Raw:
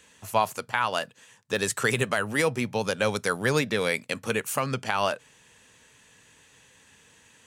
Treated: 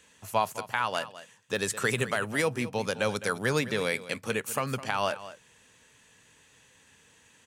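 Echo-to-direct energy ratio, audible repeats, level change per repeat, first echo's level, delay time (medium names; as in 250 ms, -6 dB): -15.0 dB, 1, no regular repeats, -15.0 dB, 209 ms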